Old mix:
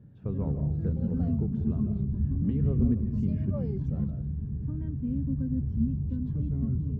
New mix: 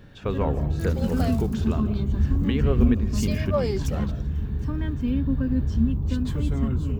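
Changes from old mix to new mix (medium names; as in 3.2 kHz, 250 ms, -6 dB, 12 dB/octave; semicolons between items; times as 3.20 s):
speech: send -7.0 dB; master: remove band-pass filter 140 Hz, Q 1.5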